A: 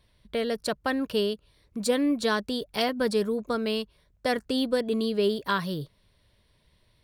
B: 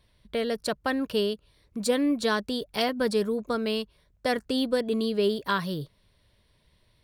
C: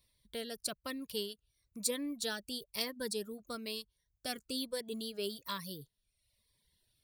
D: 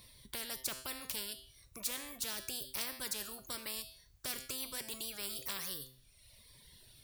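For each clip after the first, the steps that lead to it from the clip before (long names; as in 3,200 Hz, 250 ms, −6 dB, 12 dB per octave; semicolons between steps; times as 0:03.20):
no processing that can be heard
reverb reduction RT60 0.81 s; first-order pre-emphasis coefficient 0.8; phaser whose notches keep moving one way falling 1.1 Hz; level +1 dB
tuned comb filter 130 Hz, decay 0.38 s, harmonics all, mix 60%; every bin compressed towards the loudest bin 4 to 1; level +8 dB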